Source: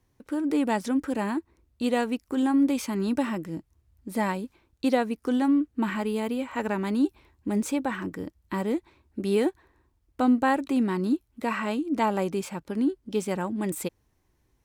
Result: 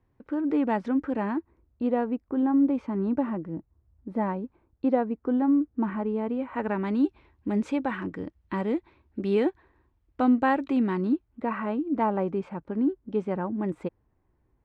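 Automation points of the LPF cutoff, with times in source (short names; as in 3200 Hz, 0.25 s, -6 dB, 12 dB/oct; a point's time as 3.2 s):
1.35 s 1900 Hz
1.93 s 1100 Hz
6.12 s 1100 Hz
7.05 s 2900 Hz
10.9 s 2900 Hz
11.44 s 1400 Hz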